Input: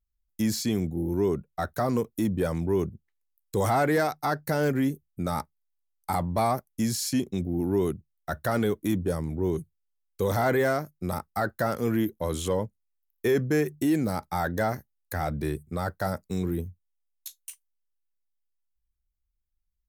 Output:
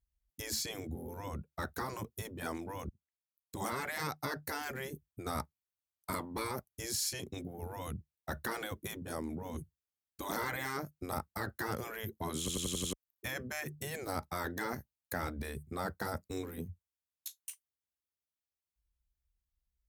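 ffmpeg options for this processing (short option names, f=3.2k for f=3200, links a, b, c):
-filter_complex "[0:a]asplit=8[a][b][c][d][e][f][g][h];[a]atrim=end=2.89,asetpts=PTS-STARTPTS,afade=t=out:st=2.886:d=0.004:c=hsin[i];[b]atrim=start=2.89:end=12.482,asetpts=PTS-STARTPTS,afade=t=in:d=1.09[j];[c]atrim=start=12.388:end=12.482[k];[d]atrim=start=12.388:end=12.482[l];[e]atrim=start=12.388:end=12.482[m];[f]atrim=start=12.388:end=12.482[n];[g]atrim=start=12.388:end=12.482[o];[h]atrim=start=12.928[p];[i][j]concat=n=2:v=0:a=1[q];[q][k]acrossfade=d=0.004:c1=hsin:c2=hsin[r];[r][l]acrossfade=d=0.004:c1=hsin:c2=hsin[s];[s][m]acrossfade=d=0.004:c1=hsin:c2=hsin[t];[t][n]acrossfade=d=0.004:c1=hsin:c2=hsin[u];[u][o]acrossfade=d=0.004:c1=hsin:c2=hsin[v];[v][p]acrossfade=d=0.004:c1=hsin:c2=hsin,afftfilt=real='re*lt(hypot(re,im),0.158)':imag='im*lt(hypot(re,im),0.158)':win_size=1024:overlap=0.75,highpass=47,lowshelf=f=95:g=9.5,volume=-3.5dB"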